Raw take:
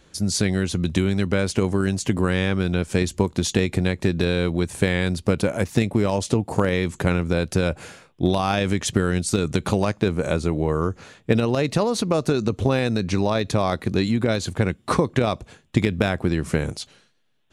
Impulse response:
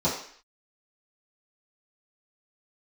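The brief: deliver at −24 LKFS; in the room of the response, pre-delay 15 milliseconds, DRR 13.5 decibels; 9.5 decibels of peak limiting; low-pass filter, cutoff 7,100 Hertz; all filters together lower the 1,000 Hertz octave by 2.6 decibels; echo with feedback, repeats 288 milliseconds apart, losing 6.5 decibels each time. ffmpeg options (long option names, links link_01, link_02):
-filter_complex "[0:a]lowpass=7100,equalizer=frequency=1000:width_type=o:gain=-3.5,alimiter=limit=-13dB:level=0:latency=1,aecho=1:1:288|576|864|1152|1440|1728:0.473|0.222|0.105|0.0491|0.0231|0.0109,asplit=2[link_01][link_02];[1:a]atrim=start_sample=2205,adelay=15[link_03];[link_02][link_03]afir=irnorm=-1:irlink=0,volume=-26dB[link_04];[link_01][link_04]amix=inputs=2:normalize=0"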